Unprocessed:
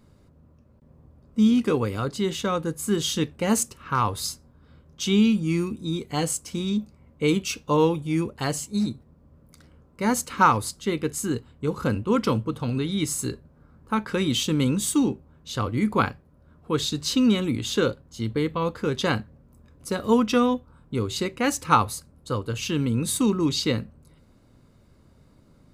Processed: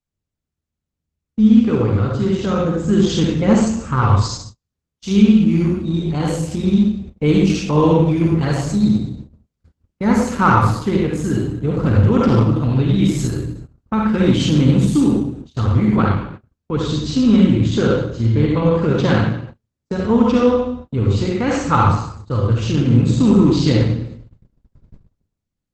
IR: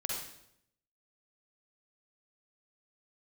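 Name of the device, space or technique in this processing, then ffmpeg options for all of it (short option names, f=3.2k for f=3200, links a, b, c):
speakerphone in a meeting room: -filter_complex "[0:a]aemphasis=mode=reproduction:type=bsi,asplit=3[a][b][c];[a]afade=t=out:st=4.17:d=0.02[d];[b]bass=f=250:g=-5,treble=f=4k:g=5,afade=t=in:st=4.17:d=0.02,afade=t=out:st=5.1:d=0.02[e];[c]afade=t=in:st=5.1:d=0.02[f];[d][e][f]amix=inputs=3:normalize=0,asplit=3[g][h][i];[g]afade=t=out:st=18.64:d=0.02[j];[h]highpass=91,afade=t=in:st=18.64:d=0.02,afade=t=out:st=19.92:d=0.02[k];[i]afade=t=in:st=19.92:d=0.02[l];[j][k][l]amix=inputs=3:normalize=0[m];[1:a]atrim=start_sample=2205[n];[m][n]afir=irnorm=-1:irlink=0,dynaudnorm=f=210:g=9:m=15.5dB,agate=range=-40dB:threshold=-30dB:ratio=16:detection=peak,volume=-1dB" -ar 48000 -c:a libopus -b:a 12k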